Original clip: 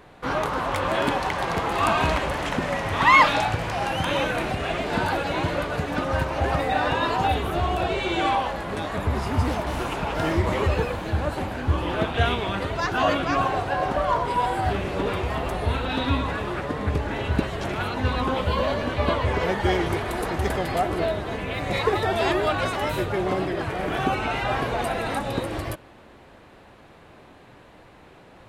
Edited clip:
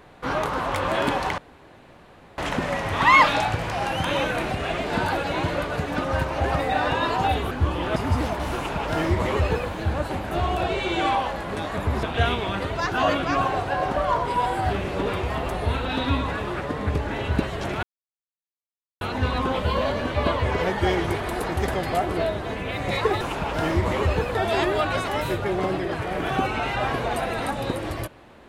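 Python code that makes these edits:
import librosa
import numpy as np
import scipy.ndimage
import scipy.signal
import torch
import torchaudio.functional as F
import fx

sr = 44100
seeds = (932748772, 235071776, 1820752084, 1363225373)

y = fx.edit(x, sr, fx.room_tone_fill(start_s=1.38, length_s=1.0),
    fx.swap(start_s=7.51, length_s=1.72, other_s=11.58, other_length_s=0.45),
    fx.duplicate(start_s=9.82, length_s=1.14, to_s=22.03),
    fx.insert_silence(at_s=17.83, length_s=1.18), tone=tone)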